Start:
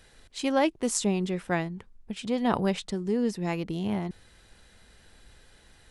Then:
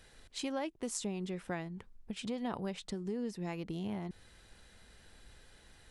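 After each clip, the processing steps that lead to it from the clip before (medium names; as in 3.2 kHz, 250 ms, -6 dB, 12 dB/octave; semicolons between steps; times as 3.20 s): compression 3:1, threshold -34 dBFS, peak gain reduction 11.5 dB; trim -3 dB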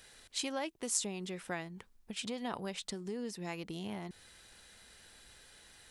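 tilt EQ +2 dB/octave; trim +1 dB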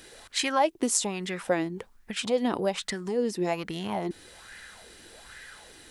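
sweeping bell 1.2 Hz 300–1900 Hz +14 dB; trim +7 dB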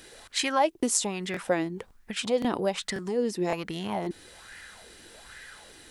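crackling interface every 0.54 s, samples 1024, repeat, from 0.78 s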